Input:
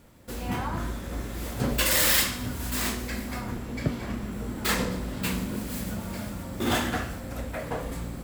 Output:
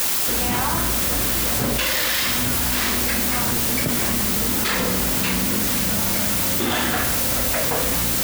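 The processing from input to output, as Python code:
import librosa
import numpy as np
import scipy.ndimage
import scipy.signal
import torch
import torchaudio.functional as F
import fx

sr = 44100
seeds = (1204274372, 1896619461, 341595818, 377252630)

y = scipy.signal.medfilt(x, 5)
y = fx.tilt_eq(y, sr, slope=1.5)
y = fx.quant_dither(y, sr, seeds[0], bits=6, dither='triangular')
y = fx.high_shelf(y, sr, hz=11000.0, db=4.5)
y = fx.env_flatten(y, sr, amount_pct=100)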